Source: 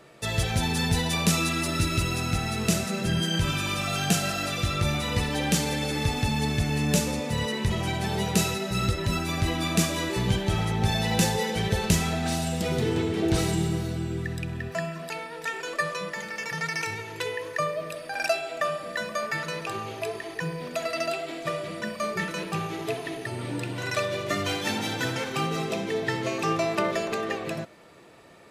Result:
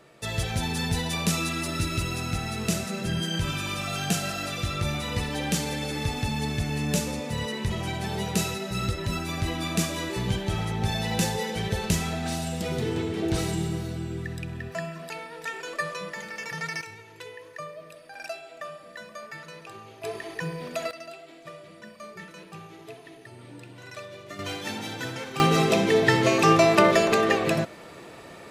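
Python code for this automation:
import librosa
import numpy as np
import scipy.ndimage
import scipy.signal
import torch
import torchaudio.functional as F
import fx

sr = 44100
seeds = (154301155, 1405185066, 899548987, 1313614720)

y = fx.gain(x, sr, db=fx.steps((0.0, -2.5), (16.81, -11.0), (20.04, -1.0), (20.91, -13.0), (24.39, -5.0), (25.4, 8.0)))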